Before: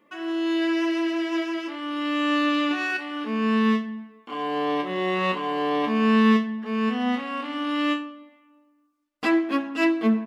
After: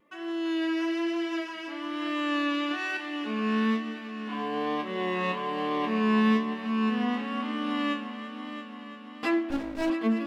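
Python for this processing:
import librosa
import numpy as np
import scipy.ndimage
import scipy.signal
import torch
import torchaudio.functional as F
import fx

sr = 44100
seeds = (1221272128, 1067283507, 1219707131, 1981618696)

y = fx.echo_heads(x, sr, ms=339, heads='first and second', feedback_pct=62, wet_db=-13)
y = fx.vibrato(y, sr, rate_hz=1.1, depth_cents=27.0)
y = fx.running_max(y, sr, window=33, at=(9.5, 9.9))
y = y * librosa.db_to_amplitude(-5.0)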